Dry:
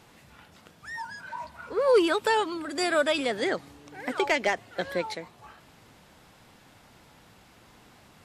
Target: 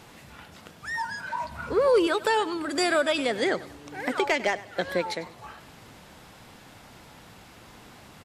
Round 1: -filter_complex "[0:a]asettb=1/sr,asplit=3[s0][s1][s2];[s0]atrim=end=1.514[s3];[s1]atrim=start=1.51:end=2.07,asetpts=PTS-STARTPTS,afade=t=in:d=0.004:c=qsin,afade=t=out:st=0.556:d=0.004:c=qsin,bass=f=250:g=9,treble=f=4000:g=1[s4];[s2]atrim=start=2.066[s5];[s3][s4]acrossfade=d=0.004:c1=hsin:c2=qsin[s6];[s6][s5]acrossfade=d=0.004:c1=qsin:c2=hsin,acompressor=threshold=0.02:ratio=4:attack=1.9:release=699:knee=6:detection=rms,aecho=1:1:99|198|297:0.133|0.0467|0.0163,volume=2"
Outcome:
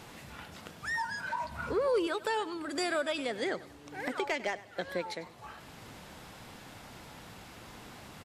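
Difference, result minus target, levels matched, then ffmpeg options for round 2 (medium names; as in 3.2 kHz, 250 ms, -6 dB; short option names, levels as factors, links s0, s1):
compression: peak gain reduction +8 dB
-filter_complex "[0:a]asettb=1/sr,asplit=3[s0][s1][s2];[s0]atrim=end=1.514[s3];[s1]atrim=start=1.51:end=2.07,asetpts=PTS-STARTPTS,afade=t=in:d=0.004:c=qsin,afade=t=out:st=0.556:d=0.004:c=qsin,bass=f=250:g=9,treble=f=4000:g=1[s4];[s2]atrim=start=2.066[s5];[s3][s4]acrossfade=d=0.004:c1=hsin:c2=qsin[s6];[s6][s5]acrossfade=d=0.004:c1=qsin:c2=hsin,acompressor=threshold=0.0708:ratio=4:attack=1.9:release=699:knee=6:detection=rms,aecho=1:1:99|198|297:0.133|0.0467|0.0163,volume=2"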